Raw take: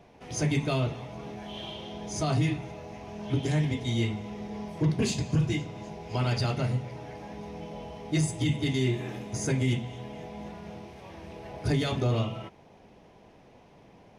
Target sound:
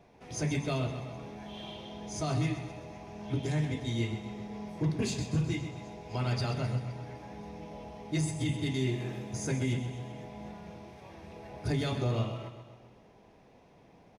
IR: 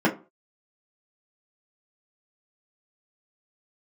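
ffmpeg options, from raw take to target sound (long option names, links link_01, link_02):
-af "bandreject=frequency=3000:width=16,aecho=1:1:129|258|387|516|645|774:0.299|0.164|0.0903|0.0497|0.0273|0.015,volume=-4.5dB"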